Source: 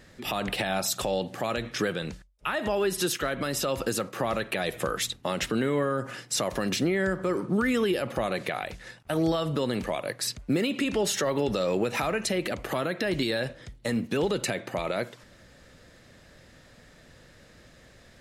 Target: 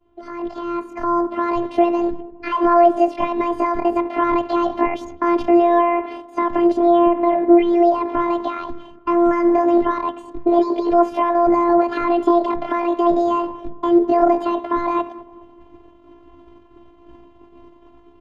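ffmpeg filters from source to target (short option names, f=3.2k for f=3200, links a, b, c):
-filter_complex "[0:a]asetrate=76340,aresample=44100,atempo=0.577676,asplit=2[a][b];[b]alimiter=level_in=4dB:limit=-24dB:level=0:latency=1:release=353,volume=-4dB,volume=-2dB[c];[a][c]amix=inputs=2:normalize=0,lowpass=1.3k,equalizer=f=140:w=0.36:g=8.5,agate=range=-33dB:threshold=-37dB:ratio=3:detection=peak,asplit=2[d][e];[e]adelay=206,lowpass=f=940:p=1,volume=-17dB,asplit=2[f][g];[g]adelay=206,lowpass=f=940:p=1,volume=0.53,asplit=2[h][i];[i]adelay=206,lowpass=f=940:p=1,volume=0.53,asplit=2[j][k];[k]adelay=206,lowpass=f=940:p=1,volume=0.53,asplit=2[l][m];[m]adelay=206,lowpass=f=940:p=1,volume=0.53[n];[d][f][h][j][l][n]amix=inputs=6:normalize=0,afftfilt=real='hypot(re,im)*cos(PI*b)':imag='0':win_size=512:overlap=0.75,dynaudnorm=f=160:g=13:m=12.5dB"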